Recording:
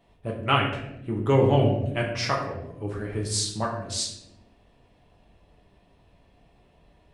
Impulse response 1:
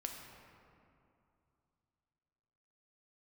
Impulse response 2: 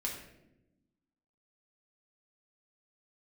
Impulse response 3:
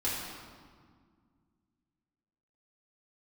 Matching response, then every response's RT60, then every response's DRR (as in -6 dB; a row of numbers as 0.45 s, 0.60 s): 2; 2.7 s, 0.90 s, 1.8 s; 1.5 dB, -2.5 dB, -9.5 dB